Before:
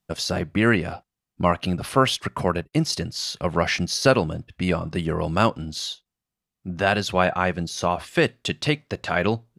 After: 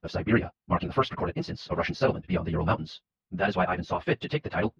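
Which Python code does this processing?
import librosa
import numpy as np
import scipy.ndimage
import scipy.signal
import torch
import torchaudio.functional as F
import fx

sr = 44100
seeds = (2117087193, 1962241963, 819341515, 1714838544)

y = fx.stretch_vocoder_free(x, sr, factor=0.5)
y = fx.air_absorb(y, sr, metres=270.0)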